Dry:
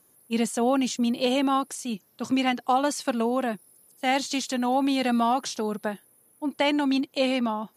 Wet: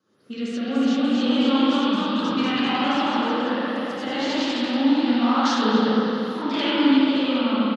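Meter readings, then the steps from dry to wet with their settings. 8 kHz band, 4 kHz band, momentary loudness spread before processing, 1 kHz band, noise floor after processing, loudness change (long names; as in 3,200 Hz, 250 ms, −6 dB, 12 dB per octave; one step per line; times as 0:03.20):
−8.0 dB, +6.0 dB, 10 LU, +1.5 dB, −32 dBFS, +4.5 dB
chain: camcorder AGC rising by 71 dB per second
high-shelf EQ 2,900 Hz +11 dB
soft clipping −18 dBFS, distortion −13 dB
flanger 0.48 Hz, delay 9 ms, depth 9 ms, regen +51%
rotating-speaker cabinet horn 0.7 Hz
two-band tremolo in antiphase 1 Hz, depth 50%, crossover 620 Hz
single-tap delay 257 ms −17 dB
spring reverb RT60 3.6 s, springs 37/59 ms, chirp 65 ms, DRR −8 dB
delay with pitch and tempo change per echo 318 ms, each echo +1 semitone, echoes 3
loudspeaker in its box 160–4,600 Hz, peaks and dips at 220 Hz +5 dB, 700 Hz −7 dB, 1,300 Hz +7 dB, 2,300 Hz −6 dB
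level +1.5 dB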